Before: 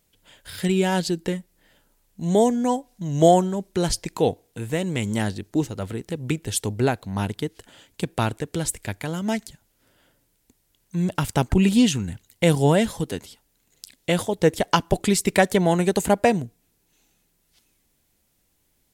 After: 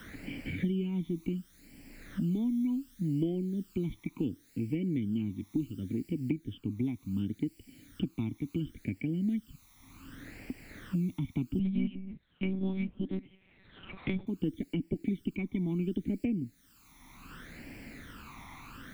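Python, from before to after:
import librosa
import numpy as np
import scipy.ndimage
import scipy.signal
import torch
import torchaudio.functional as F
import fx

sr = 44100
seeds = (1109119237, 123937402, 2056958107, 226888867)

y = fx.diode_clip(x, sr, knee_db=-6.5)
y = fx.dynamic_eq(y, sr, hz=340.0, q=2.6, threshold_db=-37.0, ratio=4.0, max_db=6)
y = fx.formant_cascade(y, sr, vowel='i')
y = fx.dmg_noise_colour(y, sr, seeds[0], colour='white', level_db=-68.0)
y = fx.phaser_stages(y, sr, stages=12, low_hz=490.0, high_hz=1200.0, hz=0.69, feedback_pct=35)
y = fx.lpc_monotone(y, sr, seeds[1], pitch_hz=190.0, order=8, at=(11.59, 14.27))
y = fx.band_squash(y, sr, depth_pct=100)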